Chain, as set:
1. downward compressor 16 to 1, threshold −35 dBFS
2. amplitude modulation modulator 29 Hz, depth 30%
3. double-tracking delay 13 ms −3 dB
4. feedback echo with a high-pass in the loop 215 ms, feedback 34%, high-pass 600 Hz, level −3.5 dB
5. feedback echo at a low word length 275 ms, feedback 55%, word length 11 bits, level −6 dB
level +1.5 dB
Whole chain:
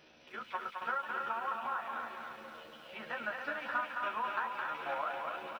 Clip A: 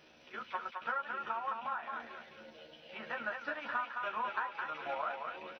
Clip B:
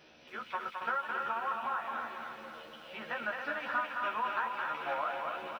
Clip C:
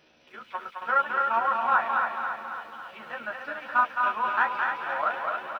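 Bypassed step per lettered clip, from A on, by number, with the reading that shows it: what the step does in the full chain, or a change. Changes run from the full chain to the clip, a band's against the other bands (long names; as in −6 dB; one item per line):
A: 5, change in momentary loudness spread +1 LU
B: 2, change in integrated loudness +2.0 LU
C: 1, average gain reduction 5.0 dB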